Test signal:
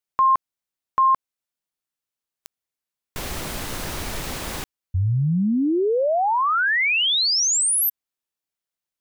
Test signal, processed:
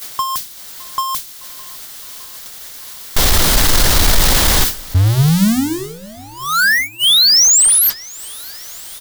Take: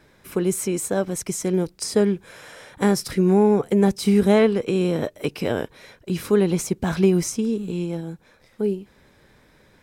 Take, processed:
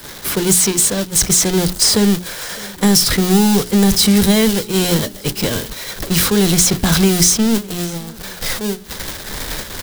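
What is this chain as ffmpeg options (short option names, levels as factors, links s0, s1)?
-filter_complex "[0:a]aeval=exprs='val(0)+0.5*0.0668*sgn(val(0))':c=same,acrossover=split=220|2200|5000[s0][s1][s2][s3];[s0]acompressor=threshold=0.0891:ratio=4[s4];[s1]acompressor=threshold=0.0316:ratio=4[s5];[s2]acompressor=threshold=0.02:ratio=4[s6];[s3]acompressor=threshold=0.00631:ratio=4[s7];[s4][s5][s6][s7]amix=inputs=4:normalize=0,crystalizer=i=3.5:c=0,asubboost=boost=2:cutoff=78,asplit=2[s8][s9];[s9]volume=15,asoftclip=hard,volume=0.0668,volume=0.562[s10];[s8][s10]amix=inputs=2:normalize=0,equalizer=f=2500:w=3.4:g=-5.5,acontrast=85,agate=range=0.0631:threshold=0.251:ratio=16:release=341:detection=rms,bandreject=f=60:t=h:w=6,bandreject=f=120:t=h:w=6,bandreject=f=180:t=h:w=6,bandreject=f=240:t=h:w=6,bandreject=f=300:t=h:w=6,bandreject=f=360:t=h:w=6,bandreject=f=420:t=h:w=6,aecho=1:1:611|1222|1833:0.0668|0.0354|0.0188,volume=1.19"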